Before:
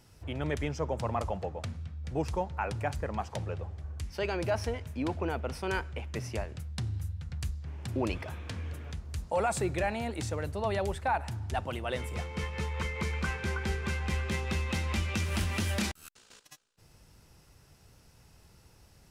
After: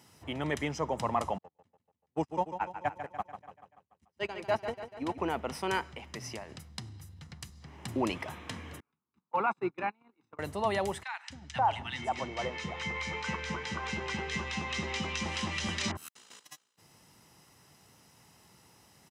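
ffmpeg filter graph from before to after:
-filter_complex "[0:a]asettb=1/sr,asplit=3[a][b][c];[a]atrim=end=1.384[d];[b]atrim=start=1.38:end=5.18,asetpts=PTS-STARTPTS,afade=t=in:d=0.004:c=qsin,afade=t=out:st=3.796:d=0.004:c=qsin,agate=range=-46dB:threshold=-31dB:ratio=16:release=100:detection=peak,aecho=1:1:145|290|435|580|725|870:0.335|0.184|0.101|0.0557|0.0307|0.0169,atrim=end_sample=167580[e];[c]atrim=start=5.176[f];[d][e]acrossfade=d=0.004:c1=hsin:c2=qsin[g];[g][f]acrossfade=d=0.004:c1=qsin:c2=hsin,asettb=1/sr,asplit=3[h][i][j];[h]atrim=end=5.834[k];[i]atrim=start=5.83:end=7.77,asetpts=PTS-STARTPTS,afade=t=in:d=0.004:c=qsin,afade=t=out:st=1.936:d=0.004:c=qsin,acompressor=threshold=-38dB:ratio=3:attack=3.2:release=140:knee=1:detection=peak,equalizer=f=4.9k:t=o:w=0.49:g=5[l];[j]atrim=start=7.766[m];[k][l]acrossfade=d=0.004:c1=hsin:c2=qsin[n];[n][m]acrossfade=d=0.004:c1=qsin:c2=hsin,asettb=1/sr,asplit=3[o][p][q];[o]atrim=end=8.804[r];[p]atrim=start=8.8:end=10.39,asetpts=PTS-STARTPTS,afade=t=in:d=0.004:c=qsin,afade=t=out:st=1.586:d=0.004:c=qsin,agate=range=-36dB:threshold=-30dB:ratio=16:release=100:detection=peak,highpass=230,lowpass=2.1k,aecho=1:1:0.8:0.67,atrim=end_sample=70119[s];[q]atrim=start=10.386[t];[r][s]acrossfade=d=0.004:c1=hsin:c2=qsin[u];[u][t]acrossfade=d=0.004:c1=qsin:c2=hsin,asettb=1/sr,asplit=3[v][w][x];[v]atrim=end=11.034[y];[w]atrim=start=11.03:end=15.97,asetpts=PTS-STARTPTS,afade=t=in:d=0.004:c=qsin,afade=t=out:st=4.936:d=0.004:c=qsin,lowpass=f=6.8k:w=0.5412,lowpass=f=6.8k:w=1.3066,acrossover=split=270|1400[z][aa][ab];[z]adelay=270[ac];[aa]adelay=530[ad];[ac][ad][ab]amix=inputs=3:normalize=0,atrim=end_sample=217854[ae];[x]atrim=start=15.966[af];[y][ae]acrossfade=d=0.004:c1=hsin:c2=qsin[ag];[ag][af]acrossfade=d=0.004:c1=qsin:c2=hsin,highpass=200,bandreject=f=4.5k:w=13,aecho=1:1:1:0.34,volume=2.5dB"

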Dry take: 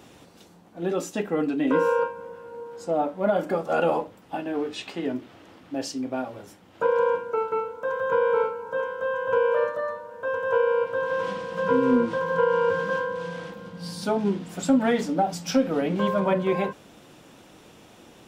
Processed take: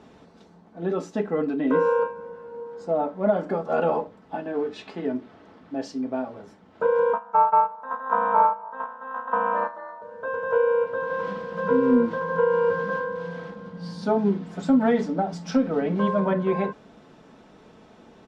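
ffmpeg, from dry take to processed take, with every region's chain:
-filter_complex "[0:a]asettb=1/sr,asplit=3[a][b][c];[a]atrim=end=7.134[d];[b]atrim=start=7.13:end=10.02,asetpts=PTS-STARTPTS,afade=t=in:d=0.004:c=qsin,afade=t=out:st=2.886:d=0.004:c=qsin,highpass=f=860:t=q:w=8.2,agate=range=-8dB:threshold=-24dB:ratio=16:release=100:detection=peak,tremolo=f=270:d=0.621[e];[c]atrim=start=10.016[f];[d][e]acrossfade=d=0.004:c1=hsin:c2=qsin[g];[g][f]acrossfade=d=0.004:c1=qsin:c2=hsin,lowpass=3.8k,equalizer=f=2.8k:t=o:w=0.9:g=-7.5,aecho=1:1:4.6:0.39"

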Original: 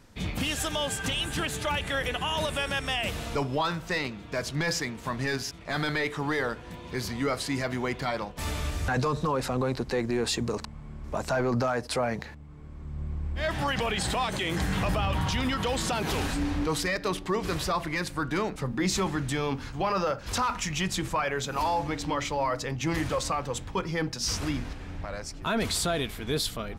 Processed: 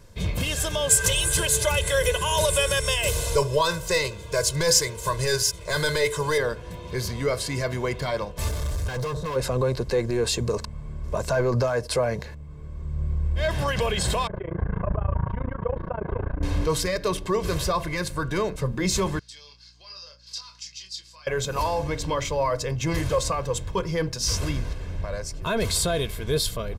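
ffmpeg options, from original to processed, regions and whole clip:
-filter_complex "[0:a]asettb=1/sr,asplit=3[a][b][c];[a]atrim=end=0.894[d];[b]atrim=start=0.89:end=6.38,asetpts=PTS-STARTPTS,afade=t=in:d=0.004:c=qsin,afade=t=out:st=5.486:d=0.004:c=qsin,bass=f=250:g=-2,treble=f=4k:g=10,aecho=1:1:2:0.7,atrim=end_sample=242109[e];[c]atrim=start=6.376[f];[d][e]acrossfade=d=0.004:c1=hsin:c2=qsin[g];[g][f]acrossfade=d=0.004:c1=qsin:c2=hsin,asettb=1/sr,asplit=3[h][i][j];[h]atrim=end=8.484[k];[i]atrim=start=8.48:end=9.36,asetpts=PTS-STARTPTS,afade=t=in:d=0.004:c=qsin,afade=t=out:st=0.876:d=0.004:c=qsin,equalizer=f=2.6k:t=o:w=0.7:g=-5,volume=31.5dB,asoftclip=hard,volume=-31.5dB[l];[j]atrim=start=9.356[m];[k][l]acrossfade=d=0.004:c1=hsin:c2=qsin[n];[n][m]acrossfade=d=0.004:c1=qsin:c2=hsin,asettb=1/sr,asplit=3[o][p][q];[o]atrim=end=14.274[r];[p]atrim=start=14.27:end=16.43,asetpts=PTS-STARTPTS,afade=t=in:d=0.004:c=qsin,afade=t=out:st=2.156:d=0.004:c=qsin,lowpass=f=1.5k:w=0.5412,lowpass=f=1.5k:w=1.3066,tremolo=f=28:d=0.974[s];[q]atrim=start=16.426[t];[r][s]acrossfade=d=0.004:c1=hsin:c2=qsin[u];[u][t]acrossfade=d=0.004:c1=qsin:c2=hsin,asettb=1/sr,asplit=3[v][w][x];[v]atrim=end=19.194[y];[w]atrim=start=19.19:end=21.27,asetpts=PTS-STARTPTS,afade=t=in:d=0.004:c=qsin,afade=t=out:st=2.076:d=0.004:c=qsin,bandpass=f=4.7k:t=q:w=5.2,asplit=2[z][aa];[aa]adelay=27,volume=-6dB[ab];[z][ab]amix=inputs=2:normalize=0,atrim=end_sample=91728,aeval=exprs='val(0)+0.000631*(sin(2*PI*60*n/s)+sin(2*PI*2*60*n/s)/2+sin(2*PI*3*60*n/s)/3+sin(2*PI*4*60*n/s)/4+sin(2*PI*5*60*n/s)/5)':c=same[ac];[x]atrim=start=21.266[ad];[y][ac]acrossfade=d=0.004:c1=hsin:c2=qsin[ae];[ae][ad]acrossfade=d=0.004:c1=qsin:c2=hsin,equalizer=f=1.7k:t=o:w=2.7:g=-5.5,aecho=1:1:1.9:0.61,volume=4.5dB"

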